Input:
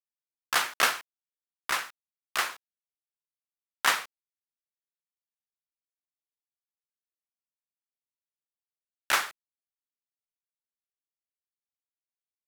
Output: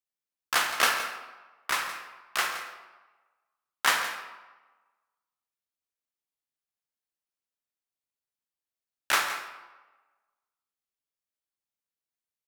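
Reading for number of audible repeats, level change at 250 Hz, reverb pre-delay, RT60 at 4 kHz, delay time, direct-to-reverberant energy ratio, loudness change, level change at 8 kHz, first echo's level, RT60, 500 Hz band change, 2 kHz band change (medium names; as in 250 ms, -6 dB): 1, +1.5 dB, 16 ms, 0.75 s, 169 ms, 4.5 dB, +0.5 dB, +1.0 dB, -13.5 dB, 1.2 s, +1.5 dB, +1.5 dB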